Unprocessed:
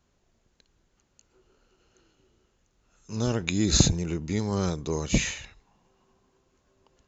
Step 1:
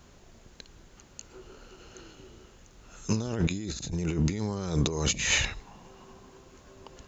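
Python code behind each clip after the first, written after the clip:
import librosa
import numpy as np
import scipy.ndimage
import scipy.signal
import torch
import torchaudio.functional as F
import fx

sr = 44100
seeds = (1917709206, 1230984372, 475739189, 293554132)

y = fx.over_compress(x, sr, threshold_db=-37.0, ratio=-1.0)
y = y * librosa.db_to_amplitude(6.5)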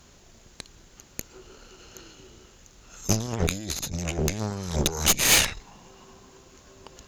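y = fx.high_shelf(x, sr, hz=3300.0, db=8.0)
y = fx.cheby_harmonics(y, sr, harmonics=(8,), levels_db=(-11,), full_scale_db=-5.0)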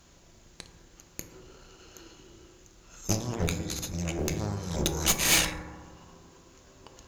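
y = fx.quant_companded(x, sr, bits=8)
y = fx.rev_fdn(y, sr, rt60_s=1.4, lf_ratio=1.3, hf_ratio=0.25, size_ms=18.0, drr_db=6.0)
y = y * librosa.db_to_amplitude(-4.5)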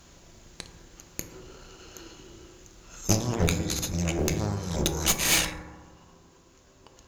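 y = fx.rider(x, sr, range_db=4, speed_s=2.0)
y = y * librosa.db_to_amplitude(1.5)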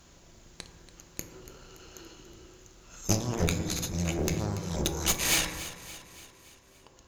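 y = fx.echo_feedback(x, sr, ms=285, feedback_pct=54, wet_db=-14.5)
y = y * librosa.db_to_amplitude(-3.0)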